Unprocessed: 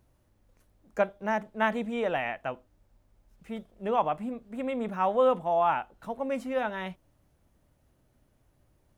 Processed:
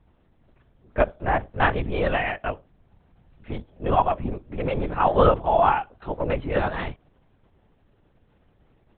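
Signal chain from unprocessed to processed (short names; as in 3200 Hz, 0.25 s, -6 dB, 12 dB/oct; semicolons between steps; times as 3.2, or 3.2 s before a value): LPC vocoder at 8 kHz whisper; gain +6 dB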